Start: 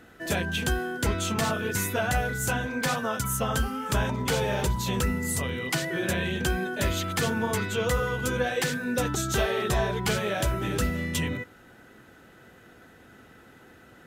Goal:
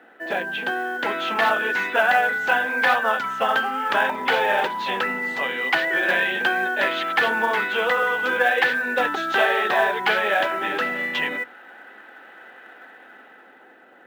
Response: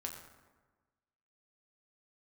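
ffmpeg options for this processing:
-filter_complex "[0:a]highpass=f=250:w=0.5412,highpass=f=250:w=1.3066,equalizer=f=560:t=q:w=4:g=4,equalizer=f=800:t=q:w=4:g=9,equalizer=f=1.7k:t=q:w=4:g=6,lowpass=f=3.3k:w=0.5412,lowpass=f=3.3k:w=1.3066,acrossover=split=870[a][b];[a]bandreject=f=60:t=h:w=6,bandreject=f=120:t=h:w=6,bandreject=f=180:t=h:w=6,bandreject=f=240:t=h:w=6,bandreject=f=300:t=h:w=6,bandreject=f=360:t=h:w=6[c];[b]dynaudnorm=f=110:g=17:m=8.5dB[d];[c][d]amix=inputs=2:normalize=0,acrusher=bits=7:mode=log:mix=0:aa=0.000001"

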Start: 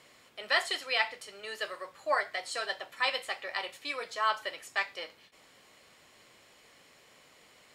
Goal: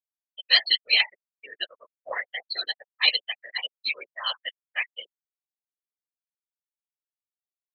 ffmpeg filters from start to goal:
-af "afftfilt=real='re*gte(hypot(re,im),0.0562)':imag='im*gte(hypot(re,im),0.0562)':win_size=1024:overlap=0.75,aexciter=amount=14.4:drive=1:freq=2.1k,afftfilt=real='hypot(re,im)*cos(2*PI*random(0))':imag='hypot(re,im)*sin(2*PI*random(1))':win_size=512:overlap=0.75"

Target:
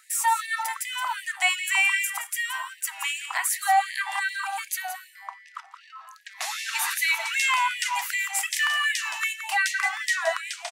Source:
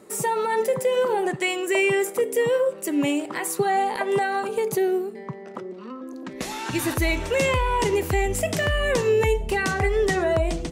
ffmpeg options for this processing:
-af "aecho=1:1:171:0.316,afftfilt=real='re*gte(b*sr/1024,640*pow(1700/640,0.5+0.5*sin(2*PI*2.6*pts/sr)))':imag='im*gte(b*sr/1024,640*pow(1700/640,0.5+0.5*sin(2*PI*2.6*pts/sr)))':win_size=1024:overlap=0.75,volume=3.5dB"

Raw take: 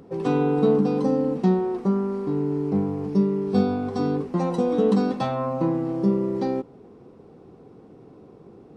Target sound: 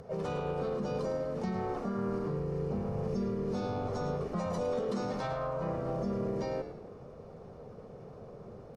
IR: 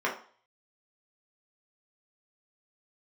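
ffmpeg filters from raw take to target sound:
-filter_complex "[0:a]aemphasis=mode=reproduction:type=50fm,bandreject=f=360:w=12,aecho=1:1:1.7:0.94,acrossover=split=1200[a][b];[a]acompressor=threshold=-24dB:ratio=5[c];[c][b]amix=inputs=2:normalize=0,alimiter=level_in=1.5dB:limit=-24dB:level=0:latency=1:release=34,volume=-1.5dB,areverse,acompressor=mode=upward:threshold=-44dB:ratio=2.5,areverse,aexciter=amount=3:drive=2.3:freq=4.6k,asplit=2[d][e];[e]asetrate=52444,aresample=44100,atempo=0.840896,volume=-5dB[f];[d][f]amix=inputs=2:normalize=0,asplit=5[g][h][i][j][k];[h]adelay=107,afreqshift=-85,volume=-10dB[l];[i]adelay=214,afreqshift=-170,volume=-18.9dB[m];[j]adelay=321,afreqshift=-255,volume=-27.7dB[n];[k]adelay=428,afreqshift=-340,volume=-36.6dB[o];[g][l][m][n][o]amix=inputs=5:normalize=0,volume=-3dB"

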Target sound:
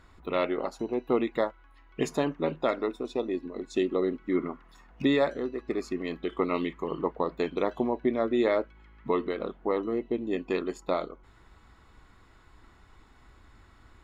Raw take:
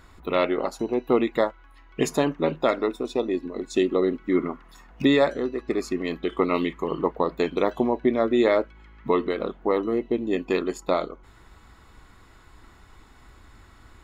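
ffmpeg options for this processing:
-af "highshelf=f=8.5k:g=-9.5,volume=-5dB"

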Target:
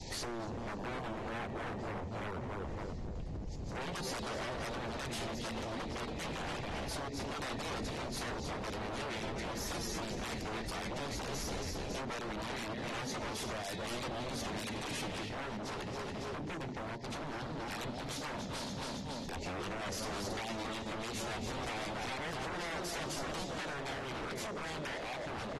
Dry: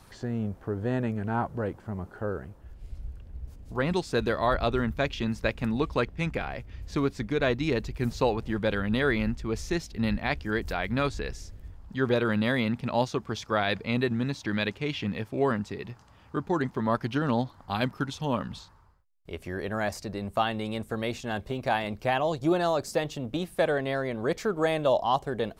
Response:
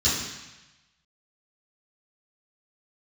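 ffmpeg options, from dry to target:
-filter_complex "[0:a]adynamicequalizer=threshold=0.01:dfrequency=1400:dqfactor=1.5:tfrequency=1400:tqfactor=1.5:attack=5:release=100:ratio=0.375:range=1.5:mode=boostabove:tftype=bell,asplit=2[a][b];[b]alimiter=limit=-21.5dB:level=0:latency=1:release=110,volume=3dB[c];[a][c]amix=inputs=2:normalize=0,aexciter=amount=5.9:drive=0.9:freq=4.3k,aemphasis=mode=reproduction:type=50kf,bandreject=f=50:t=h:w=6,bandreject=f=100:t=h:w=6,bandreject=f=150:t=h:w=6,bandreject=f=200:t=h:w=6,bandreject=f=250:t=h:w=6,bandreject=f=300:t=h:w=6,aecho=1:1:277|554|831|1108|1385|1662:0.376|0.195|0.102|0.0528|0.0275|0.0143,asplit=2[d][e];[1:a]atrim=start_sample=2205,lowshelf=f=180:g=-8.5[f];[e][f]afir=irnorm=-1:irlink=0,volume=-25dB[g];[d][g]amix=inputs=2:normalize=0,acompressor=threshold=-33dB:ratio=8,aresample=16000,aresample=44100,asuperstop=centerf=1300:order=12:qfactor=1.5,aeval=exprs='0.0119*(abs(mod(val(0)/0.0119+3,4)-2)-1)':c=same,volume=2.5dB" -ar 48000 -c:a aac -b:a 32k

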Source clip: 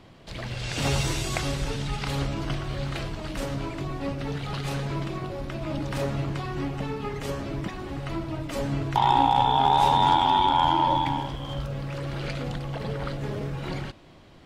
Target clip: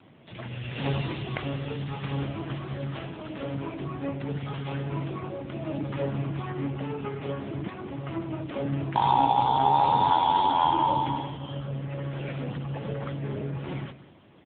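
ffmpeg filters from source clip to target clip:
-filter_complex "[0:a]asettb=1/sr,asplit=3[a][b][c];[a]atrim=end=2.404[d];[b]atrim=start=2.4:end=3.6,asetpts=PTS-STARTPTS,afade=t=in:d=0.004:c=qsin,afade=t=out:st=1.196:d=0.004:c=qsin,bandreject=f=50:t=h:w=6,bandreject=f=100:t=h:w=6,bandreject=f=150:t=h:w=6,bandreject=f=200:t=h:w=6[e];[c]atrim=start=3.596[f];[d][e]acrossfade=d=0.004:c1=hsin:c2=qsin[g];[g][f]acrossfade=d=0.004:c1=qsin:c2=hsin,aecho=1:1:186:0.168" -ar 8000 -c:a libopencore_amrnb -b:a 6700

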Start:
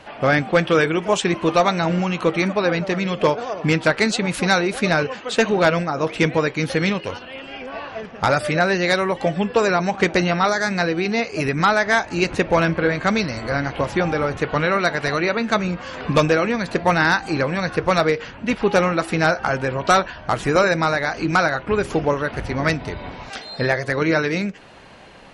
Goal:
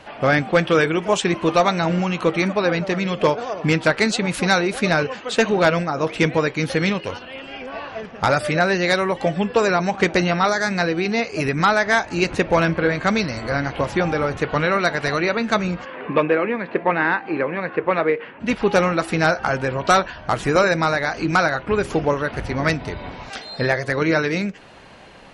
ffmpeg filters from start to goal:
-filter_complex "[0:a]asplit=3[a][b][c];[a]afade=t=out:st=15.84:d=0.02[d];[b]highpass=250,equalizer=f=390:t=q:w=4:g=3,equalizer=f=700:t=q:w=4:g=-4,equalizer=f=1.4k:t=q:w=4:g=-4,lowpass=f=2.6k:w=0.5412,lowpass=f=2.6k:w=1.3066,afade=t=in:st=15.84:d=0.02,afade=t=out:st=18.39:d=0.02[e];[c]afade=t=in:st=18.39:d=0.02[f];[d][e][f]amix=inputs=3:normalize=0"

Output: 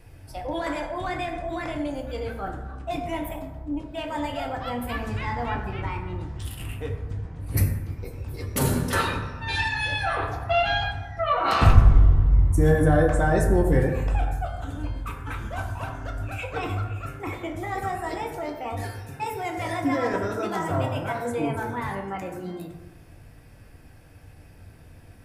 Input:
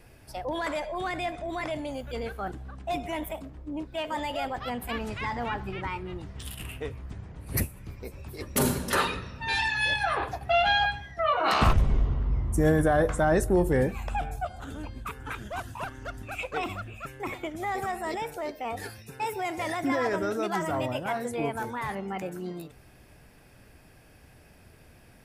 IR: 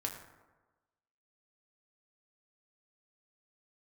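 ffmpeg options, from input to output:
-filter_complex "[0:a]lowshelf=f=140:g=8.5[a];[1:a]atrim=start_sample=2205[b];[a][b]afir=irnorm=-1:irlink=0"

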